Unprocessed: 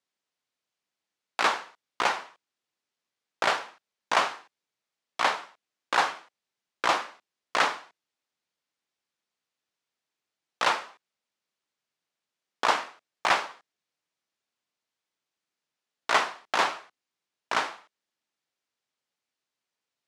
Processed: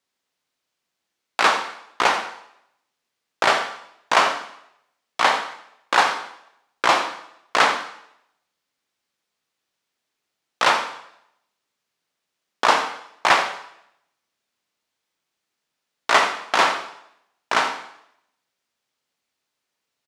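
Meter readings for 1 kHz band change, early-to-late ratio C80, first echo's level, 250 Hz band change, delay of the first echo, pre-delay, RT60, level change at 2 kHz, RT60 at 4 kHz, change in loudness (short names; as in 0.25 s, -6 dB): +7.5 dB, 11.0 dB, -14.5 dB, +7.5 dB, 85 ms, 8 ms, 0.75 s, +7.5 dB, 0.75 s, +7.0 dB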